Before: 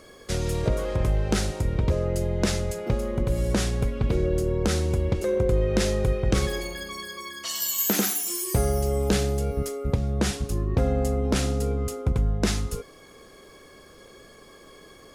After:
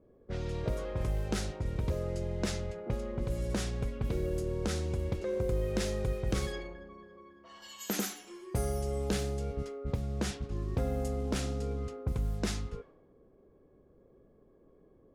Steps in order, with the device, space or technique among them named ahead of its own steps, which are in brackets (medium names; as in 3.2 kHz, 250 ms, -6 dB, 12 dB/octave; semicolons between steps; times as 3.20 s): cassette deck with a dynamic noise filter (white noise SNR 26 dB; level-controlled noise filter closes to 370 Hz, open at -18.5 dBFS); trim -9 dB